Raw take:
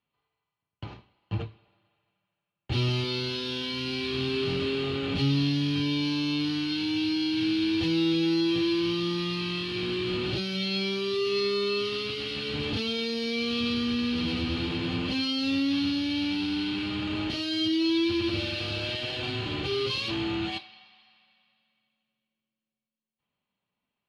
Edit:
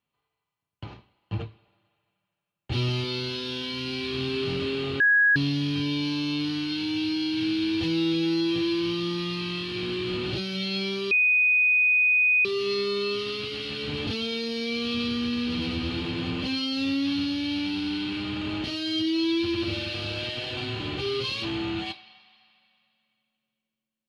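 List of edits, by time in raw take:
0:05.00–0:05.36: beep over 1,660 Hz −16 dBFS
0:11.11: insert tone 2,490 Hz −17.5 dBFS 1.34 s

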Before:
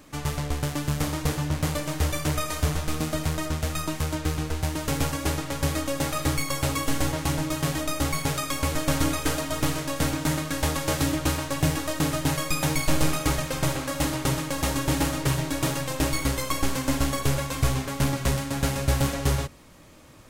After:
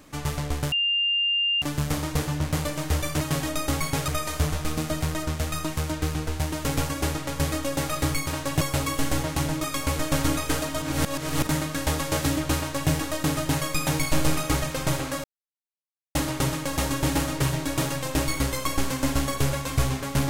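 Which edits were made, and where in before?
0:00.72: insert tone 2,800 Hz −20.5 dBFS 0.90 s
0:07.53–0:08.40: move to 0:02.31
0:09.58–0:10.23: reverse
0:11.32–0:11.66: duplicate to 0:06.50
0:14.00: splice in silence 0.91 s

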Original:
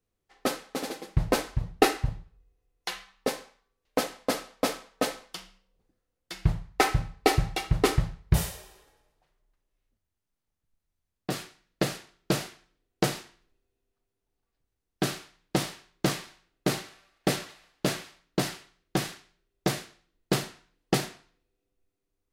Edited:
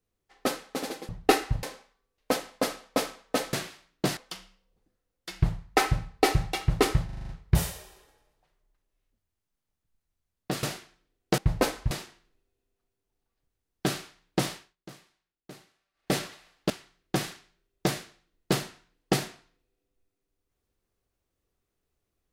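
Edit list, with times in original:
0:01.09–0:01.62: move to 0:13.08
0:02.16–0:03.30: remove
0:08.08: stutter 0.04 s, 7 plays
0:11.42–0:12.33: remove
0:15.71–0:17.32: duck −20.5 dB, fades 0.22 s
0:17.87–0:18.51: move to 0:05.20

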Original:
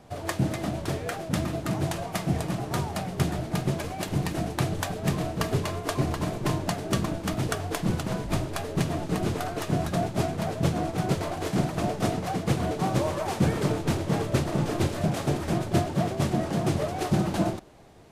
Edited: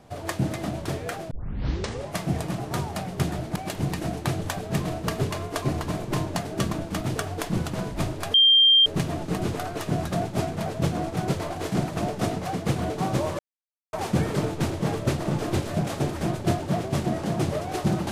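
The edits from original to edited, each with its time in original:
0:01.31: tape start 0.89 s
0:03.56–0:03.89: remove
0:08.67: insert tone 3,180 Hz −13 dBFS 0.52 s
0:13.20: splice in silence 0.54 s

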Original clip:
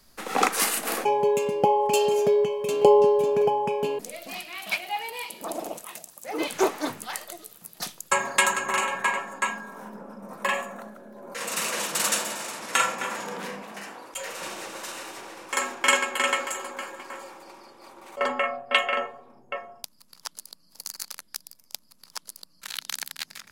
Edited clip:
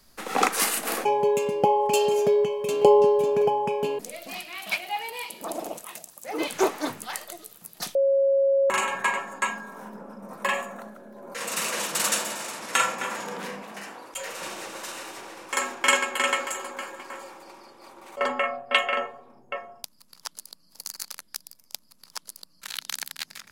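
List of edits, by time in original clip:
0:07.95–0:08.70: beep over 548 Hz −17.5 dBFS

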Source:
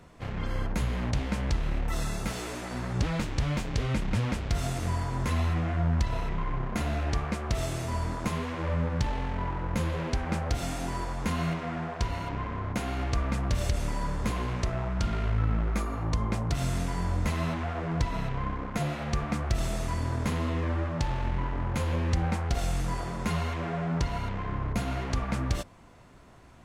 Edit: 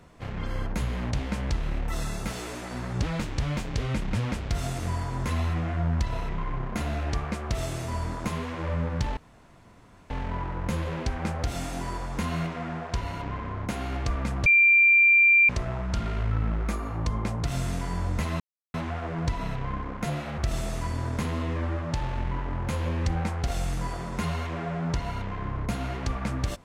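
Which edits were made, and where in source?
0:09.17: splice in room tone 0.93 s
0:13.53–0:14.56: beep over 2,370 Hz −14.5 dBFS
0:17.47: splice in silence 0.34 s
0:19.11–0:19.45: remove

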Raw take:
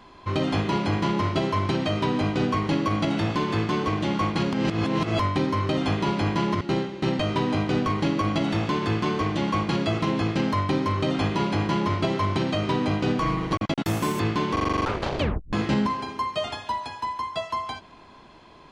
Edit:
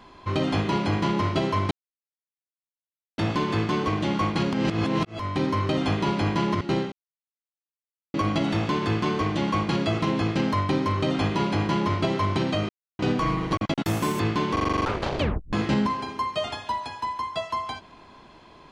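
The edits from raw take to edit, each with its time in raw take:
0:01.71–0:03.18: silence
0:05.05–0:05.45: fade in
0:06.92–0:08.14: silence
0:12.69–0:12.99: silence

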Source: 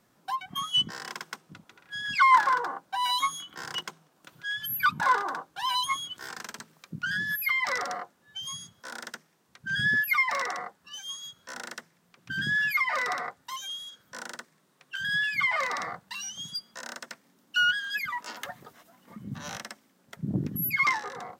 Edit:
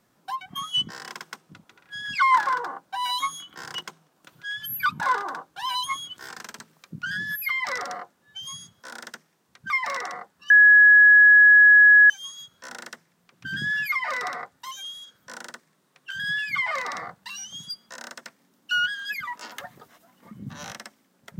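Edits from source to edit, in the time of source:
0:09.70–0:10.15: remove
0:10.95: insert tone 1,680 Hz −9.5 dBFS 1.60 s

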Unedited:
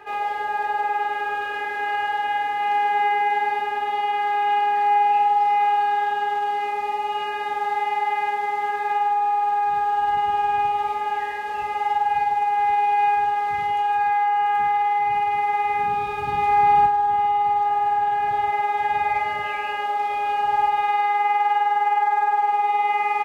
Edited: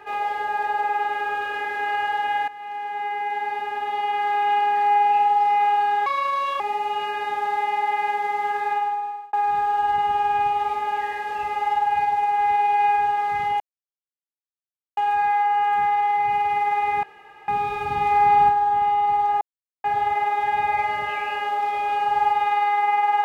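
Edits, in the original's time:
0:02.48–0:04.34: fade in, from −15 dB
0:06.06–0:06.79: play speed 135%
0:08.87–0:09.52: fade out
0:13.79: splice in silence 1.37 s
0:15.85: splice in room tone 0.45 s
0:17.78–0:18.21: silence

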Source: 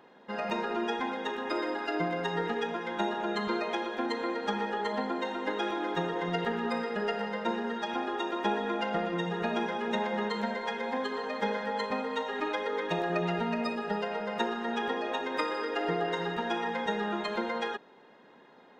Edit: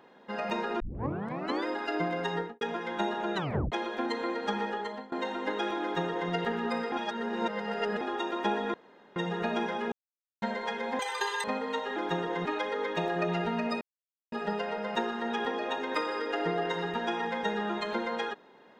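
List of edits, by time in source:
0:00.80: tape start 0.86 s
0:02.33–0:02.61: fade out and dull
0:03.35: tape stop 0.37 s
0:04.68–0:05.12: fade out, to −22.5 dB
0:05.82–0:06.31: duplicate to 0:12.39
0:06.92–0:08.01: reverse
0:08.74–0:09.16: fill with room tone
0:09.92–0:10.42: silence
0:10.99–0:11.87: play speed 195%
0:13.75: splice in silence 0.51 s

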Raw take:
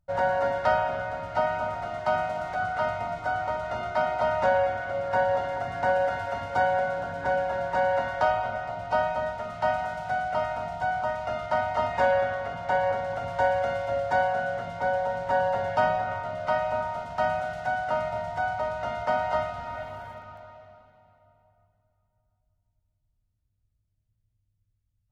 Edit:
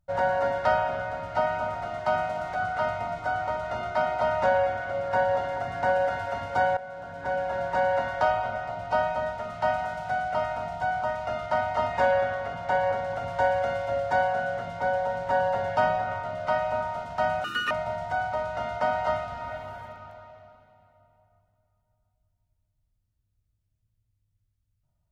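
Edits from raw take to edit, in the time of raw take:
0:06.77–0:07.61: fade in, from −15.5 dB
0:17.44–0:17.97: play speed 197%

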